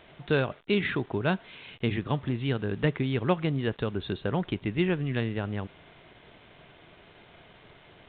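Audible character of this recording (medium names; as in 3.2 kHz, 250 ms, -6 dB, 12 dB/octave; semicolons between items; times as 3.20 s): a quantiser's noise floor 8-bit, dither none; A-law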